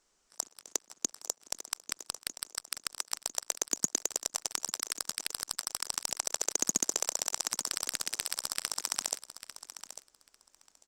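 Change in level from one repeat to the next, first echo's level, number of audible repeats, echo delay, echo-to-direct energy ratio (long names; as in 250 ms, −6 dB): −16.5 dB, −12.5 dB, 2, 847 ms, −12.5 dB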